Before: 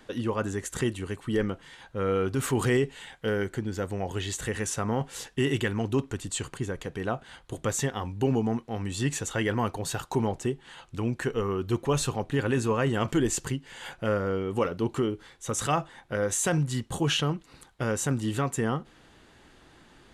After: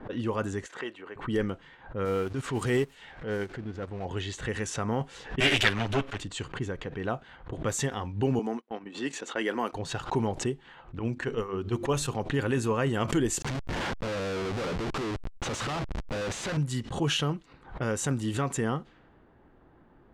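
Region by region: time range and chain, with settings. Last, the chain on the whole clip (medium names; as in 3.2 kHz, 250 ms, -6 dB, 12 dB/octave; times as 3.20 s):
0.66–1.16 s: high-pass 520 Hz + treble shelf 4.3 kHz -4 dB
2.05–4.05 s: jump at every zero crossing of -34.5 dBFS + transient shaper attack -6 dB, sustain -11 dB + upward expansion, over -33 dBFS
5.40–6.19 s: comb filter that takes the minimum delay 9.9 ms + peaking EQ 2.7 kHz +14 dB 2.8 oct + three bands expanded up and down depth 70%
8.39–9.73 s: high-pass 240 Hz 24 dB/octave + gate -38 dBFS, range -58 dB
10.99–12.15 s: hum notches 50/100/150/200/250/300/350/400 Hz + expander -28 dBFS
13.42–16.57 s: high-pass 100 Hz + Schmitt trigger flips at -41 dBFS
whole clip: level-controlled noise filter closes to 950 Hz, open at -24 dBFS; swell ahead of each attack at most 140 dB/s; trim -1.5 dB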